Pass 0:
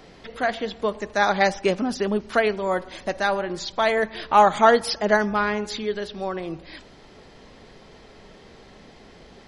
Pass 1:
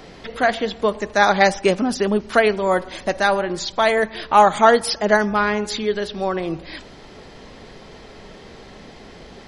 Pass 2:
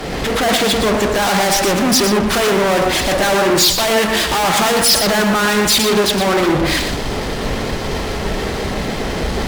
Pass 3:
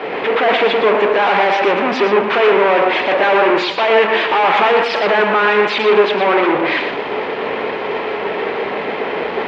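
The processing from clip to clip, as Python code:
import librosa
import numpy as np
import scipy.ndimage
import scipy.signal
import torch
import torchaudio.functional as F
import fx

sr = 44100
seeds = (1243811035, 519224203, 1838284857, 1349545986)

y1 = fx.dynamic_eq(x, sr, hz=9000.0, q=2.2, threshold_db=-54.0, ratio=4.0, max_db=7)
y1 = fx.rider(y1, sr, range_db=3, speed_s=2.0)
y1 = y1 * 10.0 ** (3.5 / 20.0)
y2 = fx.fuzz(y1, sr, gain_db=42.0, gate_db=-51.0)
y2 = y2 + 10.0 ** (-6.0 / 20.0) * np.pad(y2, (int(120 * sr / 1000.0), 0))[:len(y2)]
y2 = fx.band_widen(y2, sr, depth_pct=100)
y2 = y2 * 10.0 ** (-1.0 / 20.0)
y3 = fx.cabinet(y2, sr, low_hz=380.0, low_slope=12, high_hz=2900.0, hz=(430.0, 950.0, 2400.0), db=(6, 4, 4))
y3 = y3 * 10.0 ** (1.5 / 20.0)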